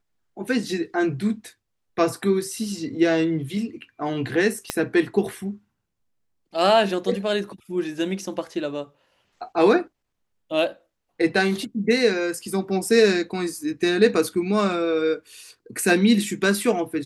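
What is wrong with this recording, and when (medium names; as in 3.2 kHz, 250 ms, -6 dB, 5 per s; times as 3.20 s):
4.70 s: pop -8 dBFS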